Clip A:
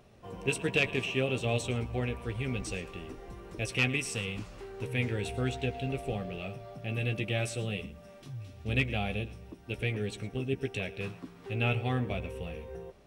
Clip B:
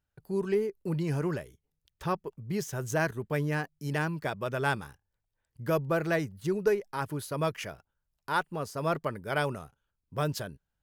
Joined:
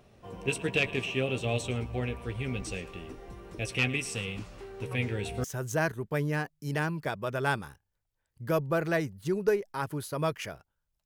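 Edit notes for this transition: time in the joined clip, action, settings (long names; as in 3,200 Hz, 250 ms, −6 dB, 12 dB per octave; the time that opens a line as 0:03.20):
clip A
0:04.91: mix in clip B from 0:02.10 0.53 s −15.5 dB
0:05.44: continue with clip B from 0:02.63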